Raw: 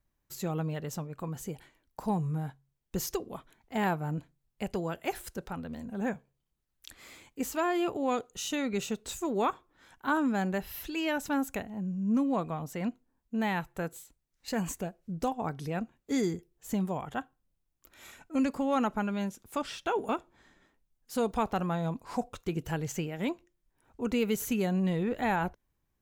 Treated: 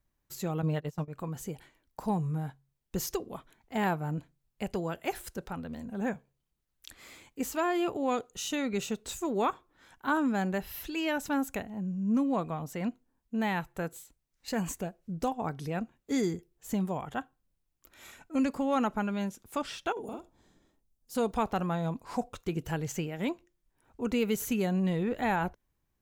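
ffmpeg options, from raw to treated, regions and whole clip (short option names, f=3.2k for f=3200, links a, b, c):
-filter_complex "[0:a]asettb=1/sr,asplit=3[a][b][c];[a]atrim=end=0.624[d];[b]atrim=start=0.62:end=1.08,asetpts=PTS-STARTPTS,afade=t=in:d=0.004:c=qsin,afade=t=out:st=0.456:d=0.004:c=qsin,agate=range=-21dB:threshold=-37dB:ratio=16:release=100:detection=peak,aecho=1:1:6.5:0.71,atrim=end_sample=20286[e];[c]atrim=start=1.076[f];[d][e]acrossfade=d=0.004:c1=hsin:c2=qsin[g];[g][f]acrossfade=d=0.004:c1=qsin:c2=hsin,asettb=1/sr,asplit=3[h][i][j];[h]atrim=end=19.924[k];[i]atrim=start=19.92:end=21.15,asetpts=PTS-STARTPTS,afade=t=in:d=0.004:c=qsin,afade=t=out:st=1.226:d=0.004:c=qsin,equalizer=f=1.8k:w=0.71:g=-13,acompressor=threshold=-37dB:ratio=4:attack=3.2:release=140:knee=1:detection=peak,asplit=2[l][m];[m]adelay=47,volume=-3.5dB[n];[l][n]amix=inputs=2:normalize=0,atrim=end_sample=54243[o];[j]atrim=start=21.146[p];[k][o]acrossfade=d=0.004:c1=hsin:c2=qsin[q];[q][p]acrossfade=d=0.004:c1=qsin:c2=hsin"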